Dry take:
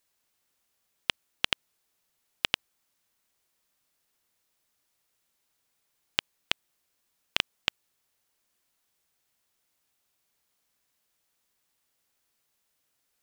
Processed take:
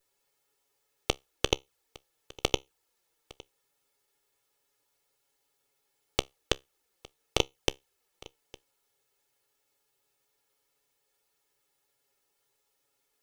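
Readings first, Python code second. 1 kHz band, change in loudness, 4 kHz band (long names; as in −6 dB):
+3.5 dB, −0.5 dB, −2.0 dB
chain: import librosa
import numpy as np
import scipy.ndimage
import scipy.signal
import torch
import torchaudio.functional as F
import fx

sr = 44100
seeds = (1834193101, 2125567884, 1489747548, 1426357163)

p1 = fx.lower_of_two(x, sr, delay_ms=2.3)
p2 = fx.peak_eq(p1, sr, hz=490.0, db=6.5, octaves=1.5)
p3 = fx.env_flanger(p2, sr, rest_ms=7.4, full_db=-35.0)
p4 = fx.comb_fb(p3, sr, f0_hz=67.0, decay_s=0.19, harmonics='all', damping=0.0, mix_pct=30)
p5 = p4 + fx.echo_single(p4, sr, ms=859, db=-22.5, dry=0)
y = p5 * 10.0 ** (5.5 / 20.0)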